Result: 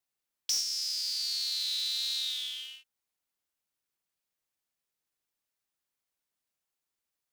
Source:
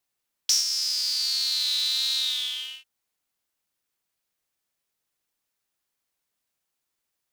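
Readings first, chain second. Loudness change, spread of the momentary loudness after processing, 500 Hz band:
−6.5 dB, 10 LU, can't be measured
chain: dynamic equaliser 1,000 Hz, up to −7 dB, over −50 dBFS, Q 1
in parallel at −11 dB: wrap-around overflow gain 12 dB
on the sum: level −8.5 dB

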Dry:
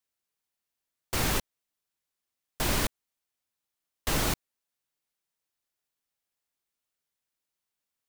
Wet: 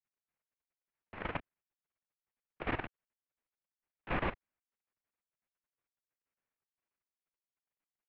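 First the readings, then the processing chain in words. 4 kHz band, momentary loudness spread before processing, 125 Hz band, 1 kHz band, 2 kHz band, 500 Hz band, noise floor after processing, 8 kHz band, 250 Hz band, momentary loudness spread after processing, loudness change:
−19.0 dB, 7 LU, −10.0 dB, −5.5 dB, −6.5 dB, −6.5 dB, below −85 dBFS, below −40 dB, −7.5 dB, 18 LU, −9.5 dB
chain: single-sideband voice off tune −290 Hz 270–2,800 Hz
output level in coarse steps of 16 dB

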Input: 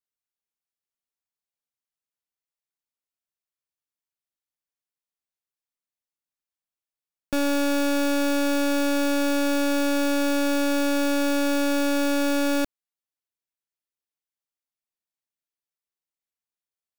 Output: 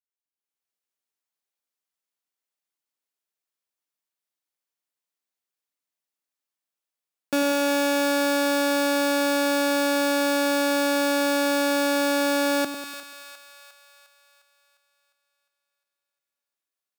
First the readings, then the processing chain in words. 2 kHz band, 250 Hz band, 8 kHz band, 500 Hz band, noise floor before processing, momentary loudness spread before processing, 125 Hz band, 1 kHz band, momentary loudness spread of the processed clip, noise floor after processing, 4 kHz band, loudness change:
+3.5 dB, −2.0 dB, +2.5 dB, +2.5 dB, below −85 dBFS, 1 LU, can't be measured, +4.0 dB, 7 LU, below −85 dBFS, +3.5 dB, +1.0 dB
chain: high-pass filter 230 Hz
automatic gain control gain up to 11.5 dB
echo with a time of its own for lows and highs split 940 Hz, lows 96 ms, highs 354 ms, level −9 dB
level −8.5 dB

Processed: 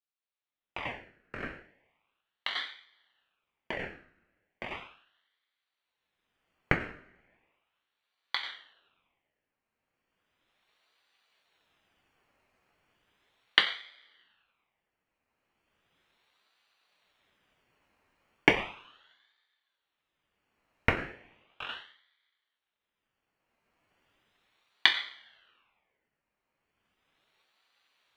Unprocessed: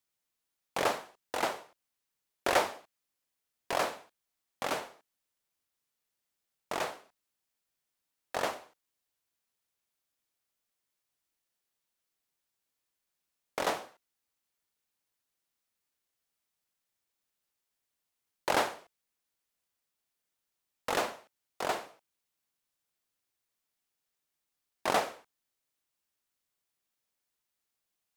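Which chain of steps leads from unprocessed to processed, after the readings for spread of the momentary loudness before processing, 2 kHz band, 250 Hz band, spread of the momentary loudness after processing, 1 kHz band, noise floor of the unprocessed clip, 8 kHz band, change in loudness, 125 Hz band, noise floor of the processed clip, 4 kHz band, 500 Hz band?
19 LU, +6.0 dB, +3.5 dB, 18 LU, −6.5 dB, −85 dBFS, below −10 dB, +2.5 dB, +10.5 dB, below −85 dBFS, +8.0 dB, −5.5 dB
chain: camcorder AGC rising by 13 dB per second
Savitzky-Golay smoothing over 41 samples
coupled-rooms reverb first 0.3 s, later 1.8 s, from −27 dB, DRR 2 dB
ring modulator whose carrier an LFO sweeps 1,800 Hz, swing 50%, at 0.36 Hz
level −7 dB

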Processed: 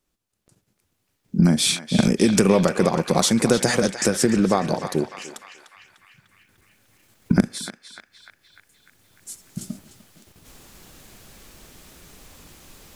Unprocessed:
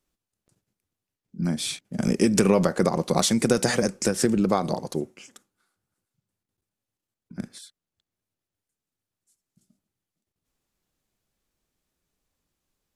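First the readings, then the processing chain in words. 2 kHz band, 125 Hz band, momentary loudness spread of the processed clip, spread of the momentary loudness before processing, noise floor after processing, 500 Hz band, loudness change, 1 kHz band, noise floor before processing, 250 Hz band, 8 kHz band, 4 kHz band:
+5.0 dB, +5.5 dB, 19 LU, 16 LU, −73 dBFS, +3.0 dB, +3.5 dB, +3.5 dB, below −85 dBFS, +4.5 dB, +4.5 dB, +6.0 dB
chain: camcorder AGC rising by 11 dB per second
feedback echo with a band-pass in the loop 299 ms, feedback 67%, band-pass 2,100 Hz, level −7 dB
level +2.5 dB

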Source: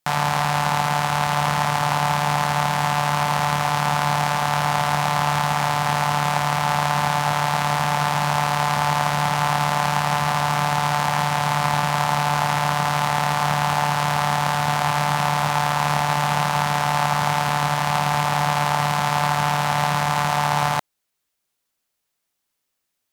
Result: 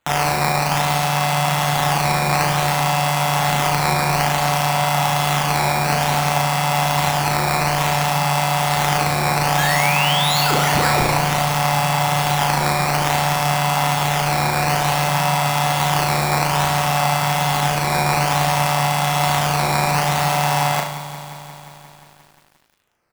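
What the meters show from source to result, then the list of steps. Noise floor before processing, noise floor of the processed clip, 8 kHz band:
−78 dBFS, −46 dBFS, +6.0 dB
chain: high-pass filter 150 Hz 12 dB per octave
high-shelf EQ 9,400 Hz +5.5 dB
comb filter 7.2 ms, depth 57%
sound drawn into the spectrogram rise, 0:09.57–0:11.14, 1,600–11,000 Hz −24 dBFS
sample-and-hold swept by an LFO 8×, swing 160% 0.57 Hz
on a send: flutter between parallel walls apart 6.1 metres, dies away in 0.52 s
on the sum: feedback echo at a low word length 177 ms, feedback 80%, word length 7 bits, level −13 dB

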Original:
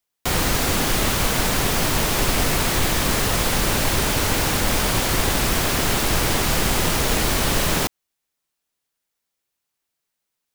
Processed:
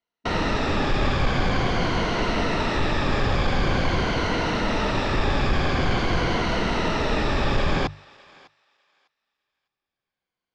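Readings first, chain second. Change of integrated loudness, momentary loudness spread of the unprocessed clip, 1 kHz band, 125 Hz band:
−4.0 dB, 0 LU, −1.0 dB, −1.0 dB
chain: rippled gain that drifts along the octave scale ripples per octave 1.9, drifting −0.46 Hz, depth 8 dB
low-pass filter 5,100 Hz 24 dB per octave
high-shelf EQ 3,300 Hz −11 dB
mains-hum notches 50/100/150 Hz
soft clipping −11.5 dBFS, distortion −22 dB
on a send: feedback echo with a high-pass in the loop 602 ms, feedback 20%, high-pass 910 Hz, level −21 dB

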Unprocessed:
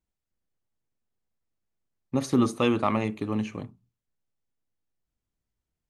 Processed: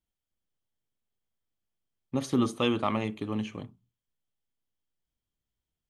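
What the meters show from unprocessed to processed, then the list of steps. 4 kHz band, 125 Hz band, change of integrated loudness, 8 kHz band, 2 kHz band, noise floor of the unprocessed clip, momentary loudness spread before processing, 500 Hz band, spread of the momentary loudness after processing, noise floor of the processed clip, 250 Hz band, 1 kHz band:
+1.5 dB, −3.5 dB, −3.5 dB, −3.5 dB, −2.5 dB, below −85 dBFS, 13 LU, −3.5 dB, 13 LU, below −85 dBFS, −3.5 dB, −3.5 dB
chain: parametric band 3,200 Hz +10 dB 0.21 octaves
level −3.5 dB

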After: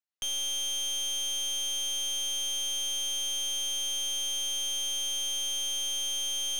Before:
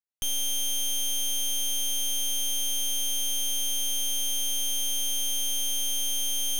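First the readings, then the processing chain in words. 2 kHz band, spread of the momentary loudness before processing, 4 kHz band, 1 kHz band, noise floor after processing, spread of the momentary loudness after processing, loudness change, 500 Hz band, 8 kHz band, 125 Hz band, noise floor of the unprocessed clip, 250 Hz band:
0.0 dB, 0 LU, 0.0 dB, −0.5 dB, −32 dBFS, 0 LU, −2.5 dB, −1.5 dB, −3.5 dB, can't be measured, −27 dBFS, −8.5 dB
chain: three-way crossover with the lows and the highs turned down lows −12 dB, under 410 Hz, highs −15 dB, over 7,800 Hz

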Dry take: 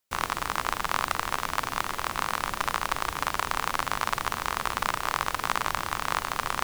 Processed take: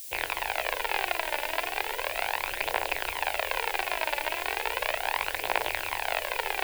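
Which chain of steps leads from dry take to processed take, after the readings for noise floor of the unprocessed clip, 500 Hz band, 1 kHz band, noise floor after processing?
−40 dBFS, +5.0 dB, −3.5 dB, −38 dBFS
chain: loose part that buzzes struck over −40 dBFS, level −26 dBFS
elliptic low-pass filter 5,100 Hz
three-way crossover with the lows and the highs turned down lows −17 dB, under 400 Hz, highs −18 dB, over 3,400 Hz
phase shifter 0.36 Hz, delay 3.5 ms, feedback 47%
hum removal 283.2 Hz, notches 28
background noise blue −49 dBFS
phaser with its sweep stopped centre 500 Hz, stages 4
level +7.5 dB

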